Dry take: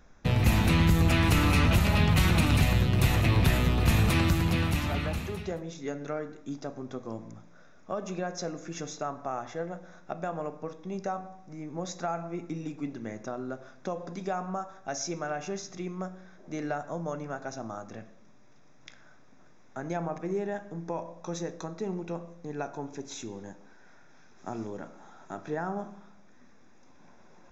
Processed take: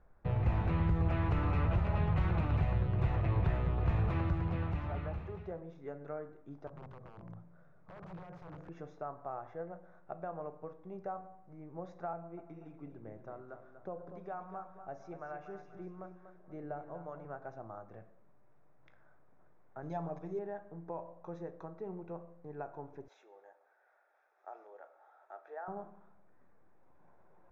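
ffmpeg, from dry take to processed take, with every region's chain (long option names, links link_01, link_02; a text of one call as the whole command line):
ffmpeg -i in.wav -filter_complex "[0:a]asettb=1/sr,asplit=3[link_01][link_02][link_03];[link_01]atrim=end=6.674[link_04];[link_02]atrim=start=6.67:end=8.69,asetpts=PTS-STARTPTS,afade=type=in:duration=0.004:curve=qsin,afade=type=out:start_time=2.016:duration=0.004:curve=qsin,acompressor=threshold=-36dB:ratio=16:attack=3.2:release=140:knee=1:detection=peak,aeval=exprs='(mod(63.1*val(0)+1,2)-1)/63.1':channel_layout=same,equalizer=frequency=150:width=2:gain=13.5[link_05];[link_03]atrim=start=8.686[link_06];[link_04][link_05]acrossfade=duration=0.004:curve1=hsin:curve2=qsin[link_07];[link_07][link_06]acrossfade=duration=0.004:curve1=qsin:curve2=hsin,asettb=1/sr,asplit=3[link_08][link_09][link_10];[link_08]atrim=end=12.134[link_11];[link_09]atrim=start=12.13:end=17.25,asetpts=PTS-STARTPTS,afade=type=in:duration=0.004:curve=qsin,afade=type=out:start_time=5.116:duration=0.004:curve=qsin,acrossover=split=760[link_12][link_13];[link_12]aeval=exprs='val(0)*(1-0.5/2+0.5/2*cos(2*PI*1.1*n/s))':channel_layout=same[link_14];[link_13]aeval=exprs='val(0)*(1-0.5/2-0.5/2*cos(2*PI*1.1*n/s))':channel_layout=same[link_15];[link_14][link_15]amix=inputs=2:normalize=0,aecho=1:1:241|482|723|964:0.335|0.131|0.0509|0.0199,atrim=end_sample=225792[link_16];[link_10]atrim=start=17.246[link_17];[link_11][link_16]acrossfade=duration=0.004:curve1=hsin:curve2=qsin[link_18];[link_18][link_17]acrossfade=duration=0.004:curve1=qsin:curve2=hsin,asettb=1/sr,asplit=3[link_19][link_20][link_21];[link_19]atrim=end=19.824[link_22];[link_20]atrim=start=19.82:end=20.39,asetpts=PTS-STARTPTS,afade=type=in:duration=0.004:curve=qsin,afade=type=out:start_time=0.566:duration=0.004:curve=qsin,highshelf=frequency=3000:width_type=q:width=1.5:gain=11,aecho=1:1:6.9:0.77,atrim=end_sample=25137[link_23];[link_21]atrim=start=20.386[link_24];[link_22][link_23]acrossfade=duration=0.004:curve1=hsin:curve2=qsin[link_25];[link_25][link_24]acrossfade=duration=0.004:curve1=qsin:curve2=hsin,asettb=1/sr,asplit=3[link_26][link_27][link_28];[link_26]atrim=end=23.084[link_29];[link_27]atrim=start=23.08:end=25.68,asetpts=PTS-STARTPTS,afade=type=in:duration=0.004:curve=qsin,afade=type=out:start_time=2.596:duration=0.004:curve=qsin,highpass=frequency=540:width=0.5412,highpass=frequency=540:width=1.3066,bandreject=frequency=1000:width=6.5[link_30];[link_28]atrim=start=25.676[link_31];[link_29][link_30]acrossfade=duration=0.004:curve1=hsin:curve2=qsin[link_32];[link_32][link_31]acrossfade=duration=0.004:curve1=qsin:curve2=hsin,lowpass=1200,equalizer=frequency=240:width=2.2:gain=-11.5,volume=-6dB" out.wav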